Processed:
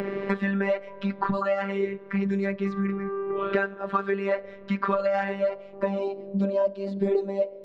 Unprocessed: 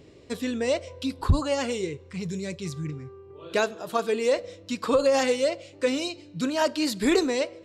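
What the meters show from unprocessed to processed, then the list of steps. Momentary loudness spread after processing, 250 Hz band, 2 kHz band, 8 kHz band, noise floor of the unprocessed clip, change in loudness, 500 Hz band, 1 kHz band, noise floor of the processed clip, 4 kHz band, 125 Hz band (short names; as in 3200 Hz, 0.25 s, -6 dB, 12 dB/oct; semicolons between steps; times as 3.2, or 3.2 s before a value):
5 LU, 0.0 dB, +0.5 dB, under -25 dB, -50 dBFS, -1.0 dB, -0.5 dB, +1.5 dB, -44 dBFS, -14.5 dB, -1.0 dB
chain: low-pass sweep 1700 Hz -> 560 Hz, 5.24–6.46; robotiser 197 Hz; three-band squash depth 100%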